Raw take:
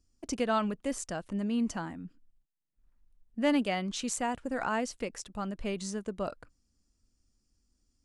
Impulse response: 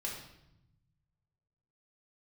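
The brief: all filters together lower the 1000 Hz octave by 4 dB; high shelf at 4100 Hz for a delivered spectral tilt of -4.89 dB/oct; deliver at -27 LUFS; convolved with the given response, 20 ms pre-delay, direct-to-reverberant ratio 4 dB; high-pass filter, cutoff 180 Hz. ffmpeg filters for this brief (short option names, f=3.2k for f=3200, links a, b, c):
-filter_complex "[0:a]highpass=180,equalizer=f=1k:t=o:g=-5,highshelf=f=4.1k:g=-8.5,asplit=2[a][b];[1:a]atrim=start_sample=2205,adelay=20[c];[b][c]afir=irnorm=-1:irlink=0,volume=-5dB[d];[a][d]amix=inputs=2:normalize=0,volume=7dB"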